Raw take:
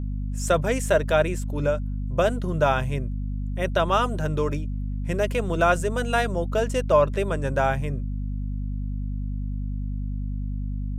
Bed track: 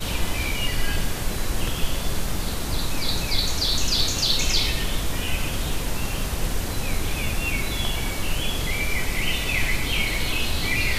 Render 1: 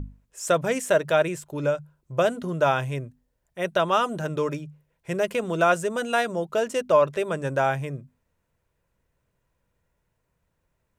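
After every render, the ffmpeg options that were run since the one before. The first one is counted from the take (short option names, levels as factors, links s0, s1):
-af "bandreject=f=50:t=h:w=6,bandreject=f=100:t=h:w=6,bandreject=f=150:t=h:w=6,bandreject=f=200:t=h:w=6,bandreject=f=250:t=h:w=6"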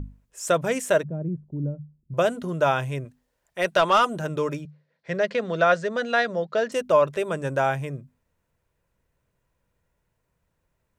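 -filter_complex "[0:a]asettb=1/sr,asplit=3[s0][s1][s2];[s0]atrim=end=1.034[s3];[s1]atrim=start=1.03:end=2.14,asetpts=PTS-STARTPTS,afade=t=in:d=0.004:c=qsin,afade=t=out:st=1.106:d=0.004:c=qsin,lowpass=f=210:t=q:w=2.3[s4];[s2]atrim=start=2.136[s5];[s3][s4]acrossfade=d=0.004:c1=hsin:c2=qsin[s6];[s6][s5]acrossfade=d=0.004:c1=qsin:c2=hsin,asettb=1/sr,asplit=3[s7][s8][s9];[s7]atrim=end=3.054[s10];[s8]atrim=start=3.05:end=4.05,asetpts=PTS-STARTPTS,afade=t=in:d=0.004:c=qsin,afade=t=out:st=0.996:d=0.004:c=qsin,asplit=2[s11][s12];[s12]highpass=f=720:p=1,volume=3.98,asoftclip=type=tanh:threshold=0.355[s13];[s11][s13]amix=inputs=2:normalize=0,lowpass=f=7800:p=1,volume=0.501[s14];[s9]atrim=start=4.046[s15];[s10][s14]acrossfade=d=0.004:c1=hsin:c2=qsin[s16];[s16][s15]acrossfade=d=0.004:c1=qsin:c2=hsin,asettb=1/sr,asplit=3[s17][s18][s19];[s17]atrim=end=4.654[s20];[s18]atrim=start=4.65:end=6.72,asetpts=PTS-STARTPTS,afade=t=in:d=0.004:c=qsin,afade=t=out:st=2.066:d=0.004:c=qsin,highpass=f=140:w=0.5412,highpass=f=140:w=1.3066,equalizer=f=340:t=q:w=4:g=-6,equalizer=f=550:t=q:w=4:g=4,equalizer=f=930:t=q:w=4:g=-4,equalizer=f=1800:t=q:w=4:g=7,equalizer=f=2700:t=q:w=4:g=-4,equalizer=f=4300:t=q:w=4:g=8,lowpass=f=5400:w=0.5412,lowpass=f=5400:w=1.3066[s21];[s19]atrim=start=6.716[s22];[s20][s21]acrossfade=d=0.004:c1=hsin:c2=qsin[s23];[s23][s22]acrossfade=d=0.004:c1=qsin:c2=hsin"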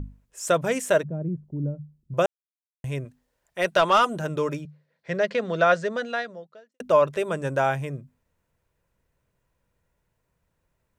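-filter_complex "[0:a]asplit=4[s0][s1][s2][s3];[s0]atrim=end=2.26,asetpts=PTS-STARTPTS,afade=t=out:st=2.256:d=0.004:c=hsin[s4];[s1]atrim=start=2.26:end=2.84,asetpts=PTS-STARTPTS,volume=0[s5];[s2]atrim=start=2.84:end=6.8,asetpts=PTS-STARTPTS,afade=t=in:d=0.004:c=hsin,afade=t=out:st=3.04:d=0.92:c=qua[s6];[s3]atrim=start=6.8,asetpts=PTS-STARTPTS,afade=t=in:d=0.004:c=hsin[s7];[s4][s5][s6][s7]concat=n=4:v=0:a=1"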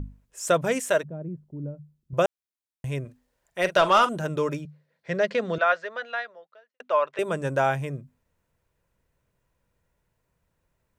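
-filter_complex "[0:a]asettb=1/sr,asplit=3[s0][s1][s2];[s0]atrim=end=0.804[s3];[s1]atrim=start=0.8:end=2.13,asetpts=PTS-STARTPTS,afade=t=in:d=0.004:c=qsin,afade=t=out:st=1.326:d=0.004:c=qsin,lowshelf=f=410:g=-7.5[s4];[s2]atrim=start=2.126[s5];[s3][s4]acrossfade=d=0.004:c1=hsin:c2=qsin[s6];[s6][s5]acrossfade=d=0.004:c1=qsin:c2=hsin,asettb=1/sr,asplit=3[s7][s8][s9];[s7]atrim=end=3.034[s10];[s8]atrim=start=3.03:end=4.09,asetpts=PTS-STARTPTS,afade=t=in:d=0.004:c=qsin,afade=t=out:st=1.056:d=0.004:c=qsin,asplit=2[s11][s12];[s12]adelay=44,volume=0.224[s13];[s11][s13]amix=inputs=2:normalize=0,atrim=end_sample=46746[s14];[s9]atrim=start=4.086[s15];[s10][s14]acrossfade=d=0.004:c1=hsin:c2=qsin[s16];[s16][s15]acrossfade=d=0.004:c1=qsin:c2=hsin,asettb=1/sr,asplit=3[s17][s18][s19];[s17]atrim=end=5.584[s20];[s18]atrim=start=5.58:end=7.19,asetpts=PTS-STARTPTS,afade=t=in:d=0.004:c=qsin,afade=t=out:st=1.606:d=0.004:c=qsin,highpass=760,lowpass=3100[s21];[s19]atrim=start=7.186[s22];[s20][s21]acrossfade=d=0.004:c1=hsin:c2=qsin[s23];[s23][s22]acrossfade=d=0.004:c1=qsin:c2=hsin"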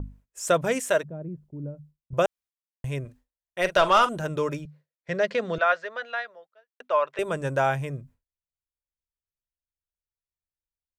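-af "agate=range=0.0224:threshold=0.00447:ratio=3:detection=peak,asubboost=boost=3.5:cutoff=88"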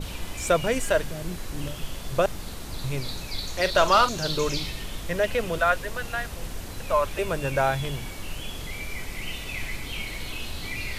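-filter_complex "[1:a]volume=0.335[s0];[0:a][s0]amix=inputs=2:normalize=0"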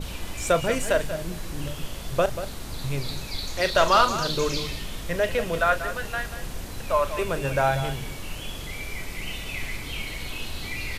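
-filter_complex "[0:a]asplit=2[s0][s1];[s1]adelay=36,volume=0.224[s2];[s0][s2]amix=inputs=2:normalize=0,asplit=2[s3][s4];[s4]adelay=186.6,volume=0.282,highshelf=f=4000:g=-4.2[s5];[s3][s5]amix=inputs=2:normalize=0"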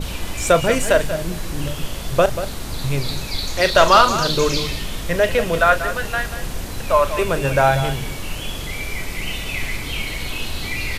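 -af "volume=2.24,alimiter=limit=0.794:level=0:latency=1"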